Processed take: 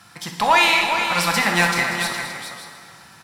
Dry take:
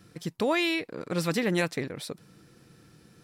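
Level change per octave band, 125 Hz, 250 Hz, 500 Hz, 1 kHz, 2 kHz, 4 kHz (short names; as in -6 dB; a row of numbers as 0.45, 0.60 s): +3.5, +1.0, +3.0, +18.0, +15.0, +13.5 dB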